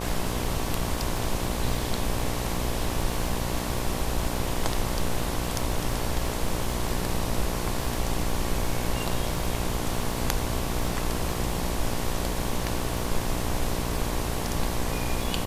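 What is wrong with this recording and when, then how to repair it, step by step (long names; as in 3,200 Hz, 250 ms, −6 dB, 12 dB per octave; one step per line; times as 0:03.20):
mains buzz 60 Hz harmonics 19 −32 dBFS
surface crackle 22 per second −31 dBFS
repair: click removal
hum removal 60 Hz, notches 19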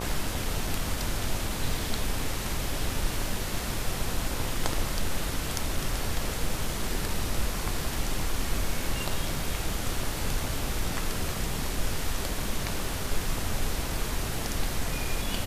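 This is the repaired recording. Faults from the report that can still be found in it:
none of them is left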